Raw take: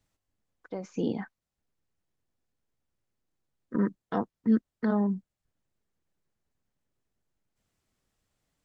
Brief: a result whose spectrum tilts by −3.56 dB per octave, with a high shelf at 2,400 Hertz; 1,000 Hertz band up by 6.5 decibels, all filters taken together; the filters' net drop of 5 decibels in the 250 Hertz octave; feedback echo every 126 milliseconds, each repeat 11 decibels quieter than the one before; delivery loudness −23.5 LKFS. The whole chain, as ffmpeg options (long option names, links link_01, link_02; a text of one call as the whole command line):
ffmpeg -i in.wav -af "equalizer=frequency=250:width_type=o:gain=-6.5,equalizer=frequency=1000:width_type=o:gain=8,highshelf=frequency=2400:gain=4,aecho=1:1:126|252|378:0.282|0.0789|0.0221,volume=9.5dB" out.wav